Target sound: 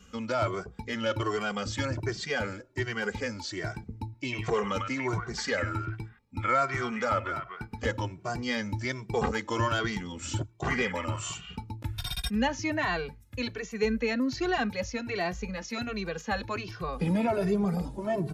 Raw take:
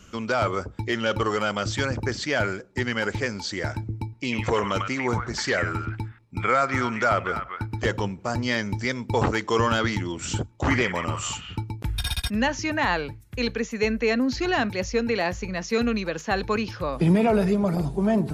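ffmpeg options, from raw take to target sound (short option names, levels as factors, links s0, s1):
-filter_complex "[0:a]asplit=2[s0][s1];[s1]adelay=2.1,afreqshift=1.3[s2];[s0][s2]amix=inputs=2:normalize=1,volume=0.75"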